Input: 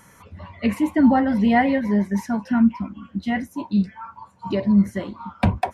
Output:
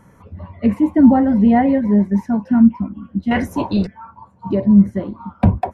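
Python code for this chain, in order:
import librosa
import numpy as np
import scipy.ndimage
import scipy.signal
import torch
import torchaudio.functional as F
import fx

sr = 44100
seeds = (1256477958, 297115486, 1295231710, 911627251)

y = fx.tilt_shelf(x, sr, db=9.0, hz=1300.0)
y = fx.spectral_comp(y, sr, ratio=2.0, at=(3.31, 3.87))
y = F.gain(torch.from_numpy(y), -2.5).numpy()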